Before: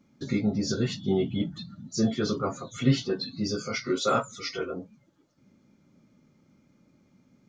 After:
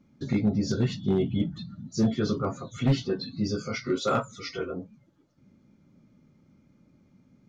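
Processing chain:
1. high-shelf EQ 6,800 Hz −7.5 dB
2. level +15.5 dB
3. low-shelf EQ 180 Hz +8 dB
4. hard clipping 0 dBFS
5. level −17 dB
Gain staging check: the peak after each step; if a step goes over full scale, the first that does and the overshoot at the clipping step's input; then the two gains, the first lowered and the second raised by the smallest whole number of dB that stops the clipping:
−10.5, +5.0, +8.0, 0.0, −17.0 dBFS
step 2, 8.0 dB
step 2 +7.5 dB, step 5 −9 dB

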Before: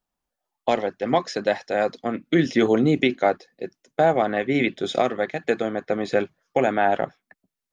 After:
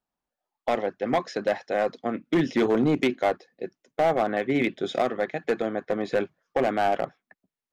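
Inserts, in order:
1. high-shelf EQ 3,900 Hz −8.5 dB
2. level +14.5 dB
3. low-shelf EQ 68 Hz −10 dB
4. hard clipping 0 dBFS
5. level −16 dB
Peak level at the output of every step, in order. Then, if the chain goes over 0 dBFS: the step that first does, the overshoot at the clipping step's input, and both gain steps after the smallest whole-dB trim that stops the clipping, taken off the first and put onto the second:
−7.0, +7.5, +7.5, 0.0, −16.0 dBFS
step 2, 7.5 dB
step 2 +6.5 dB, step 5 −8 dB

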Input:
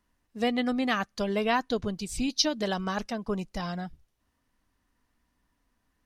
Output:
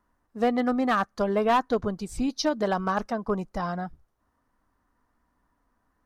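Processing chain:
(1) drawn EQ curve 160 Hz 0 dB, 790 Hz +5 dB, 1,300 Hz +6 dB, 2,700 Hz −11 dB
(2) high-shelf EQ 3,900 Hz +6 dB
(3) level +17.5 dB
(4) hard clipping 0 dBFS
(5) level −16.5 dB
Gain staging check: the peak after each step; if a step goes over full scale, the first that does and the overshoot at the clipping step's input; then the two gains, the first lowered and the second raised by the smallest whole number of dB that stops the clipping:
−11.5, −11.0, +6.5, 0.0, −16.5 dBFS
step 3, 6.5 dB
step 3 +10.5 dB, step 5 −9.5 dB

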